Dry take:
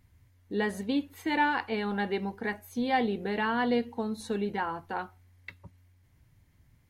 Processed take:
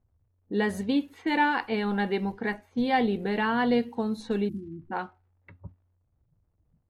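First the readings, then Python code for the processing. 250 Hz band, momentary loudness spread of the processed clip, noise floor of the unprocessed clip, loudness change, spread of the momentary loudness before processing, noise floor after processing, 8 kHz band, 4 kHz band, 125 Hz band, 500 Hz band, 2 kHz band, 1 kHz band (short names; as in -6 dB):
+4.0 dB, 11 LU, -64 dBFS, +3.0 dB, 10 LU, -72 dBFS, n/a, +2.0 dB, +4.5 dB, +2.5 dB, +2.0 dB, +1.5 dB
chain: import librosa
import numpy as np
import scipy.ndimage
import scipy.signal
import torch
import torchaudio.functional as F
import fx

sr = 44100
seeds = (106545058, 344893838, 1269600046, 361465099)

y = fx.spec_erase(x, sr, start_s=4.49, length_s=0.43, low_hz=380.0, high_hz=8200.0)
y = fx.noise_reduce_blind(y, sr, reduce_db=17)
y = fx.dmg_crackle(y, sr, seeds[0], per_s=260.0, level_db=-59.0)
y = fx.low_shelf(y, sr, hz=110.0, db=10.5)
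y = fx.env_lowpass(y, sr, base_hz=640.0, full_db=-27.0)
y = y * librosa.db_to_amplitude(2.0)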